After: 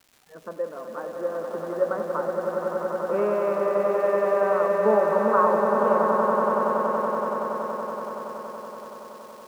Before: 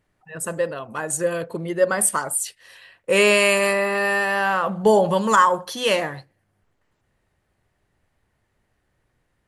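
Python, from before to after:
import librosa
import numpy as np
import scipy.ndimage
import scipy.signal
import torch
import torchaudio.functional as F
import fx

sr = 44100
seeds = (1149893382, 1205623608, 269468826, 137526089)

y = scipy.signal.sosfilt(scipy.signal.cheby1(3, 1.0, [210.0, 1300.0], 'bandpass', fs=sr, output='sos'), x)
y = fx.dmg_crackle(y, sr, seeds[0], per_s=430.0, level_db=-38.0)
y = fx.echo_swell(y, sr, ms=94, loudest=8, wet_db=-7.5)
y = F.gain(torch.from_numpy(y), -6.0).numpy()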